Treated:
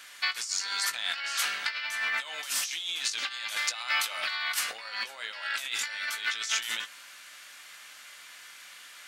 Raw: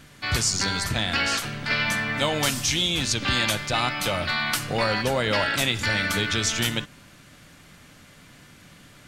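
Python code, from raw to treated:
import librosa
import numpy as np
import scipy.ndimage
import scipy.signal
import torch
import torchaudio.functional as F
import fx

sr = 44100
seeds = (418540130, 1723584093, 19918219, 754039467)

y = fx.over_compress(x, sr, threshold_db=-29.0, ratio=-0.5)
y = scipy.signal.sosfilt(scipy.signal.butter(2, 1300.0, 'highpass', fs=sr, output='sos'), y)
y = fx.doubler(y, sr, ms=18.0, db=-11.5)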